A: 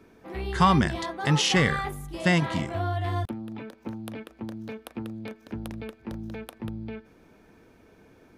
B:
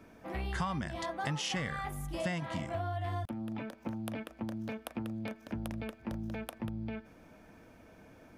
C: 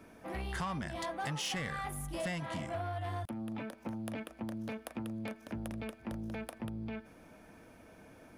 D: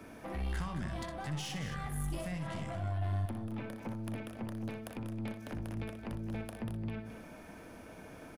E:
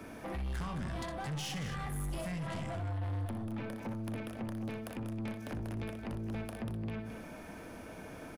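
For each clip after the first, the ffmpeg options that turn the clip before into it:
-af "equalizer=f=400:t=o:w=0.33:g=-9,equalizer=f=630:t=o:w=0.33:g=5,equalizer=f=4000:t=o:w=0.33:g=-4,acompressor=threshold=0.0224:ratio=6"
-af "equalizer=f=10000:t=o:w=0.33:g=8,asoftclip=type=tanh:threshold=0.0282,lowshelf=f=170:g=-3,volume=1.12"
-filter_complex "[0:a]acrossover=split=170[s0][s1];[s1]acompressor=threshold=0.00501:ratio=6[s2];[s0][s2]amix=inputs=2:normalize=0,aeval=exprs='(tanh(79.4*val(0)+0.35)-tanh(0.35))/79.4':c=same,aecho=1:1:61|82|218:0.398|0.106|0.335,volume=2"
-af "asoftclip=type=tanh:threshold=0.015,volume=1.5"

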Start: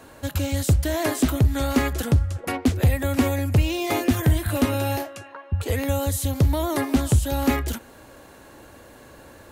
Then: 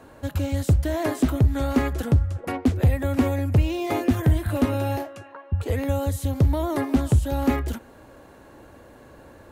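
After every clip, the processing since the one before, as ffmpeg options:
-af "highshelf=f=2100:g=-9.5"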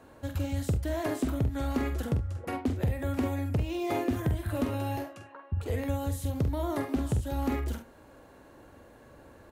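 -af "acompressor=threshold=0.126:ratio=6,aecho=1:1:46|72:0.422|0.158,volume=0.473"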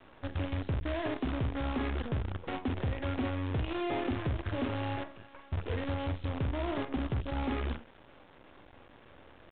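-af "acrusher=bits=6:dc=4:mix=0:aa=0.000001,asoftclip=type=tanh:threshold=0.0447,aresample=8000,aresample=44100"

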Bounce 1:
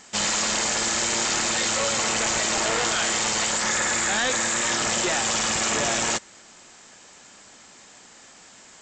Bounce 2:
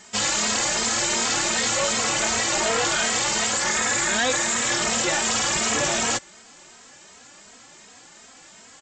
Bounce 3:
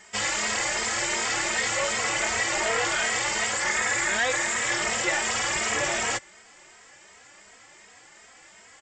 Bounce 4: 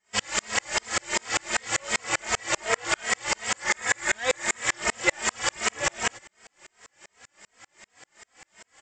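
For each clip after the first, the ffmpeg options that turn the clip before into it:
-filter_complex "[0:a]asplit=2[s0][s1];[s1]adelay=2.9,afreqshift=2.7[s2];[s0][s2]amix=inputs=2:normalize=1,volume=1.58"
-af "equalizer=f=160:t=o:w=0.33:g=-8,equalizer=f=250:t=o:w=0.33:g=-11,equalizer=f=2000:t=o:w=0.33:g=7,equalizer=f=4000:t=o:w=0.33:g=-6,equalizer=f=6300:t=o:w=0.33:g=-5,volume=0.708"
-af "aeval=exprs='val(0)*pow(10,-39*if(lt(mod(-5.1*n/s,1),2*abs(-5.1)/1000),1-mod(-5.1*n/s,1)/(2*abs(-5.1)/1000),(mod(-5.1*n/s,1)-2*abs(-5.1)/1000)/(1-2*abs(-5.1)/1000))/20)':c=same,volume=2.37"

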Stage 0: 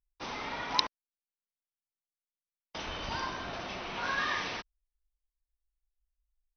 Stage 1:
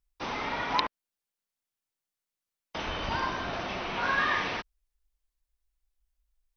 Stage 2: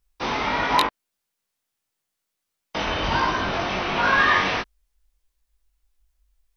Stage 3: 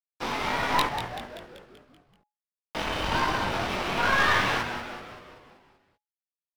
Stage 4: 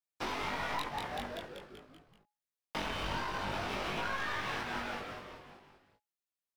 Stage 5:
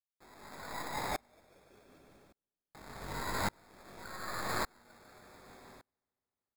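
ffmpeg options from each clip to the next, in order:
-filter_complex "[0:a]acrossover=split=3400[s0][s1];[s1]acompressor=threshold=0.00224:ratio=4:attack=1:release=60[s2];[s0][s2]amix=inputs=2:normalize=0,volume=1.88"
-af "aeval=exprs='0.501*sin(PI/2*1.58*val(0)/0.501)':c=same,flanger=delay=19:depth=3.2:speed=1.5,volume=1.58"
-filter_complex "[0:a]aeval=exprs='sgn(val(0))*max(abs(val(0))-0.0141,0)':c=same,aeval=exprs='(tanh(6.31*val(0)+0.6)-tanh(0.6))/6.31':c=same,asplit=2[s0][s1];[s1]asplit=7[s2][s3][s4][s5][s6][s7][s8];[s2]adelay=192,afreqshift=-120,volume=0.376[s9];[s3]adelay=384,afreqshift=-240,volume=0.207[s10];[s4]adelay=576,afreqshift=-360,volume=0.114[s11];[s5]adelay=768,afreqshift=-480,volume=0.0624[s12];[s6]adelay=960,afreqshift=-600,volume=0.0343[s13];[s7]adelay=1152,afreqshift=-720,volume=0.0188[s14];[s8]adelay=1344,afreqshift=-840,volume=0.0104[s15];[s9][s10][s11][s12][s13][s14][s15]amix=inputs=7:normalize=0[s16];[s0][s16]amix=inputs=2:normalize=0"
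-af "acompressor=threshold=0.0251:ratio=10,flanger=delay=18.5:depth=2.9:speed=0.48,volume=1.33"
-filter_complex "[0:a]acrusher=samples=15:mix=1:aa=0.000001,asplit=2[s0][s1];[s1]aecho=0:1:147|294|441|588|735|882:0.422|0.219|0.114|0.0593|0.0308|0.016[s2];[s0][s2]amix=inputs=2:normalize=0,aeval=exprs='val(0)*pow(10,-35*if(lt(mod(-0.86*n/s,1),2*abs(-0.86)/1000),1-mod(-0.86*n/s,1)/(2*abs(-0.86)/1000),(mod(-0.86*n/s,1)-2*abs(-0.86)/1000)/(1-2*abs(-0.86)/1000))/20)':c=same,volume=1.78"

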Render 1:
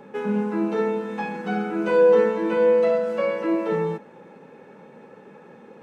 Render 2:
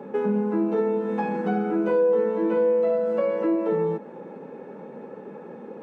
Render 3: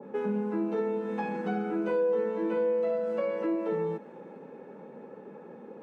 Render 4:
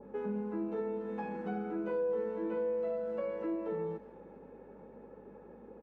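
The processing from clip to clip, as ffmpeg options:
-af "highpass=200,tiltshelf=f=1300:g=8,acompressor=threshold=0.0631:ratio=3,volume=1.19"
-af "adynamicequalizer=threshold=0.0126:dfrequency=1600:dqfactor=0.7:tfrequency=1600:tqfactor=0.7:attack=5:release=100:ratio=0.375:range=2.5:mode=boostabove:tftype=highshelf,volume=0.473"
-filter_complex "[0:a]highshelf=f=2800:g=-9,aeval=exprs='val(0)+0.001*(sin(2*PI*50*n/s)+sin(2*PI*2*50*n/s)/2+sin(2*PI*3*50*n/s)/3+sin(2*PI*4*50*n/s)/4+sin(2*PI*5*50*n/s)/5)':c=same,asplit=2[s0][s1];[s1]adelay=220,highpass=300,lowpass=3400,asoftclip=type=hard:threshold=0.0335,volume=0.0891[s2];[s0][s2]amix=inputs=2:normalize=0,volume=0.501"

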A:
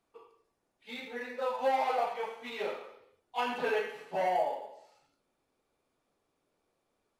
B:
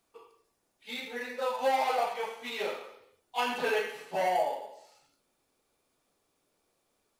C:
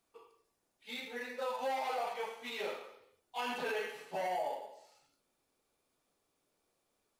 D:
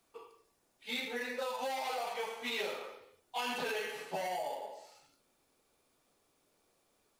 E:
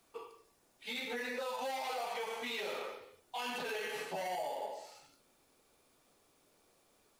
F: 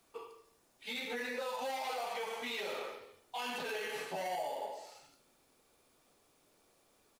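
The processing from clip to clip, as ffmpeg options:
-af "highshelf=f=3600:g=10,volume=1.12"
-af "alimiter=limit=0.0668:level=0:latency=1:release=35,volume=0.596"
-filter_complex "[0:a]acrossover=split=130|3000[s0][s1][s2];[s1]acompressor=threshold=0.00891:ratio=6[s3];[s0][s3][s2]amix=inputs=3:normalize=0,volume=2"
-af "alimiter=level_in=3.35:limit=0.0631:level=0:latency=1:release=76,volume=0.299,volume=1.58"
-af "aecho=1:1:75|150|225|300|375:0.168|0.0907|0.049|0.0264|0.0143"

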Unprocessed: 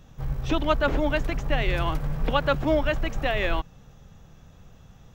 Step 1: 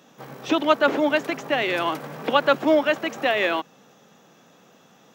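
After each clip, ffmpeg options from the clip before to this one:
-af "highpass=f=230:w=0.5412,highpass=f=230:w=1.3066,volume=1.78"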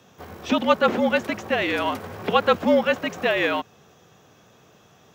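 -af "afreqshift=-53"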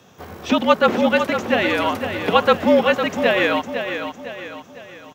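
-af "aecho=1:1:505|1010|1515|2020|2525:0.398|0.175|0.0771|0.0339|0.0149,volume=1.5"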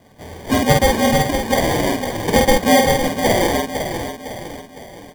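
-filter_complex "[0:a]acrusher=samples=33:mix=1:aa=0.000001,asplit=2[s0][s1];[s1]adelay=49,volume=0.708[s2];[s0][s2]amix=inputs=2:normalize=0"

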